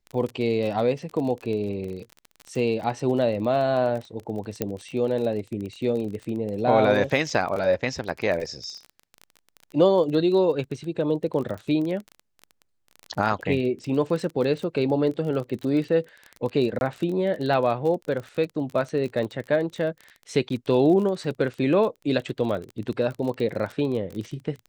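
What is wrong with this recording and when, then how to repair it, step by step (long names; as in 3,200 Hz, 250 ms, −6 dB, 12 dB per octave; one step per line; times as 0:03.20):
surface crackle 27 per second −30 dBFS
0:04.62: click −11 dBFS
0:16.79–0:16.81: drop-out 21 ms
0:20.49–0:20.50: drop-out 12 ms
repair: click removal
repair the gap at 0:16.79, 21 ms
repair the gap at 0:20.49, 12 ms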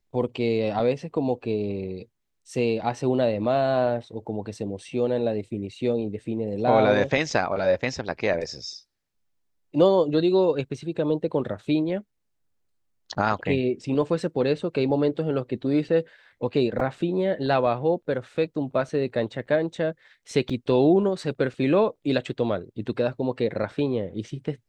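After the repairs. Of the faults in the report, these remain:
none of them is left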